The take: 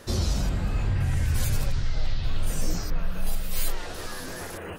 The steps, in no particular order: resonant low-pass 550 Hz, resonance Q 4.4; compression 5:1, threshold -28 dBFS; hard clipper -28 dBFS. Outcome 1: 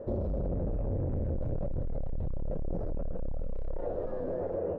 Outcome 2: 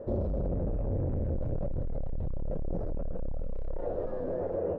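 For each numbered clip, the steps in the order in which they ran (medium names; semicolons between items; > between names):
hard clipper > resonant low-pass > compression; hard clipper > compression > resonant low-pass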